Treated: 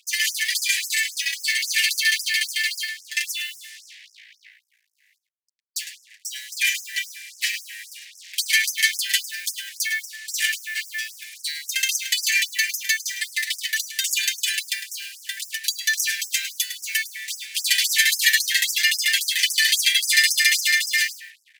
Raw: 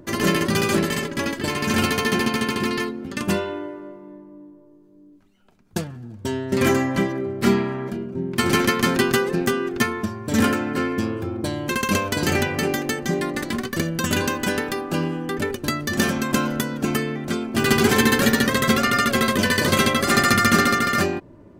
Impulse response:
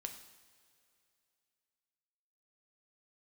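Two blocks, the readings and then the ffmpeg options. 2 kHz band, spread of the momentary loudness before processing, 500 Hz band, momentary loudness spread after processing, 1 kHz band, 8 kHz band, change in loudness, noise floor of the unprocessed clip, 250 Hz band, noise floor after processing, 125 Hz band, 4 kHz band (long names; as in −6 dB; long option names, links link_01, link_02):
+2.0 dB, 10 LU, below −40 dB, 15 LU, below −35 dB, +6.5 dB, 0.0 dB, −49 dBFS, below −40 dB, −66 dBFS, below −40 dB, +6.0 dB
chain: -filter_complex "[0:a]highpass=frequency=140:width=0.5412,highpass=frequency=140:width=1.3066,highshelf=frequency=11000:gain=-4.5,aecho=1:1:6.3:0.79,bandreject=frequency=358.6:width_type=h:width=4,bandreject=frequency=717.2:width_type=h:width=4,bandreject=frequency=1075.8:width_type=h:width=4,bandreject=frequency=1434.4:width_type=h:width=4,bandreject=frequency=1793:width_type=h:width=4,bandreject=frequency=2151.6:width_type=h:width=4,bandreject=frequency=2510.2:width_type=h:width=4,bandreject=frequency=2868.8:width_type=h:width=4,bandreject=frequency=3227.4:width_type=h:width=4,bandreject=frequency=3586:width_type=h:width=4,bandreject=frequency=3944.6:width_type=h:width=4,bandreject=frequency=4303.2:width_type=h:width=4,bandreject=frequency=4661.8:width_type=h:width=4,bandreject=frequency=5020.4:width_type=h:width=4,bandreject=frequency=5379:width_type=h:width=4,bandreject=frequency=5737.6:width_type=h:width=4,bandreject=frequency=6096.2:width_type=h:width=4,bandreject=frequency=6454.8:width_type=h:width=4,bandreject=frequency=6813.4:width_type=h:width=4,bandreject=frequency=7172:width_type=h:width=4,bandreject=frequency=7530.6:width_type=h:width=4,bandreject=frequency=7889.2:width_type=h:width=4,bandreject=frequency=8247.8:width_type=h:width=4,bandreject=frequency=8606.4:width_type=h:width=4,bandreject=frequency=8965:width_type=h:width=4,bandreject=frequency=9323.6:width_type=h:width=4,bandreject=frequency=9682.2:width_type=h:width=4,bandreject=frequency=10040.8:width_type=h:width=4,bandreject=frequency=10399.4:width_type=h:width=4,bandreject=frequency=10758:width_type=h:width=4,bandreject=frequency=11116.6:width_type=h:width=4,bandreject=frequency=11475.2:width_type=h:width=4,asplit=2[link_01][link_02];[link_02]acompressor=threshold=-26dB:ratio=6,volume=1dB[link_03];[link_01][link_03]amix=inputs=2:normalize=0,acrusher=bits=5:mix=0:aa=0.5,asuperstop=centerf=810:order=20:qfactor=0.58,asplit=2[link_04][link_05];[link_05]adelay=105,volume=-10dB,highshelf=frequency=4000:gain=-2.36[link_06];[link_04][link_06]amix=inputs=2:normalize=0,afftfilt=real='re*gte(b*sr/1024,720*pow(5200/720,0.5+0.5*sin(2*PI*3.7*pts/sr)))':imag='im*gte(b*sr/1024,720*pow(5200/720,0.5+0.5*sin(2*PI*3.7*pts/sr)))':win_size=1024:overlap=0.75,volume=2.5dB"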